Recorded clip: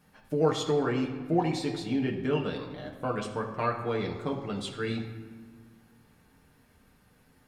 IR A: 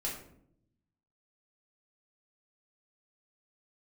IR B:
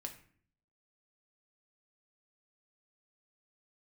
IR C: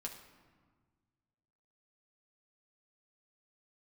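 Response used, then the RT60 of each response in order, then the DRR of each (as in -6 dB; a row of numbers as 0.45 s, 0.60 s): C; 0.70 s, 0.50 s, 1.6 s; -4.5 dB, 3.0 dB, -0.5 dB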